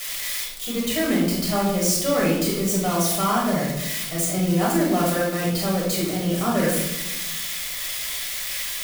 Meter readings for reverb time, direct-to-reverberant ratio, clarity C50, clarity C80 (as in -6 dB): 1.0 s, -5.0 dB, 2.0 dB, 5.0 dB